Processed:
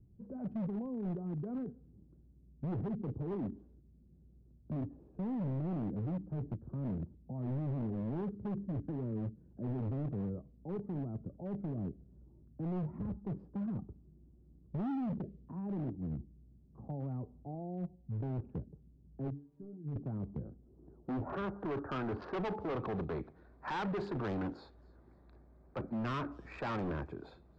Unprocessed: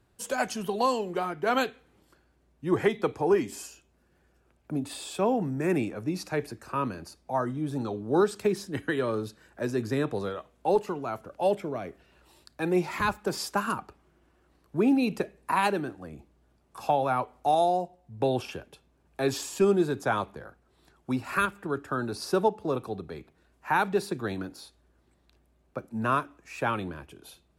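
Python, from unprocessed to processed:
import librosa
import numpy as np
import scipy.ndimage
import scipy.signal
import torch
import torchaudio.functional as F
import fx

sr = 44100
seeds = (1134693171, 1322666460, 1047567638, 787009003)

p1 = fx.wiener(x, sr, points=15)
p2 = fx.highpass(p1, sr, hz=57.0, slope=6, at=(9.11, 9.69))
p3 = fx.low_shelf(p2, sr, hz=260.0, db=6.0, at=(25.78, 26.59))
p4 = fx.over_compress(p3, sr, threshold_db=-36.0, ratio=-1.0)
p5 = p3 + (p4 * librosa.db_to_amplitude(0.0))
p6 = fx.filter_sweep_lowpass(p5, sr, from_hz=190.0, to_hz=9800.0, start_s=20.28, end_s=23.88, q=1.2)
p7 = fx.stiff_resonator(p6, sr, f0_hz=140.0, decay_s=0.24, stiffness=0.008, at=(19.3, 19.96))
p8 = np.clip(10.0 ** (29.5 / 20.0) * p7, -1.0, 1.0) / 10.0 ** (29.5 / 20.0)
p9 = fx.air_absorb(p8, sr, metres=190.0)
p10 = p9 + fx.echo_wet_highpass(p9, sr, ms=271, feedback_pct=30, hz=5500.0, wet_db=-18.0, dry=0)
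y = p10 * librosa.db_to_amplitude(-4.0)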